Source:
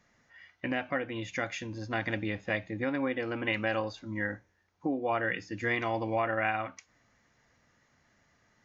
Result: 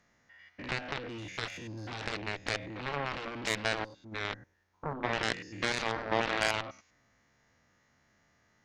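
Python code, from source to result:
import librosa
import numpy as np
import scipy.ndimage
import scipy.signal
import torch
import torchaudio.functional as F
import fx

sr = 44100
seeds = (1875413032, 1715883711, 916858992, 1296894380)

y = fx.spec_steps(x, sr, hold_ms=100)
y = fx.cheby_harmonics(y, sr, harmonics=(7,), levels_db=(-12,), full_scale_db=-17.0)
y = fx.upward_expand(y, sr, threshold_db=-49.0, expansion=1.5, at=(3.67, 4.11), fade=0.02)
y = F.gain(torch.from_numpy(y), 2.5).numpy()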